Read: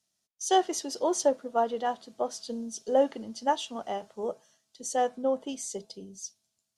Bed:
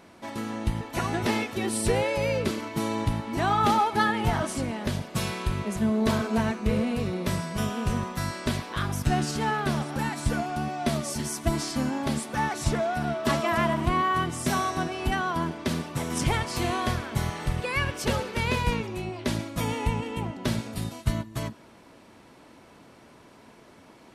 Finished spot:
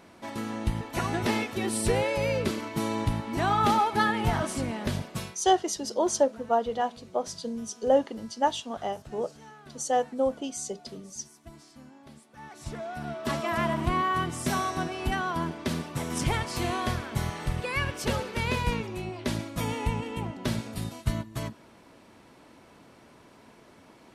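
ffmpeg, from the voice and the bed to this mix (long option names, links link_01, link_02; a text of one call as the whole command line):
ffmpeg -i stem1.wav -i stem2.wav -filter_complex "[0:a]adelay=4950,volume=1.5dB[link_01];[1:a]volume=19.5dB,afade=type=out:start_time=5.01:duration=0.36:silence=0.0841395,afade=type=in:start_time=12.35:duration=1.44:silence=0.0944061[link_02];[link_01][link_02]amix=inputs=2:normalize=0" out.wav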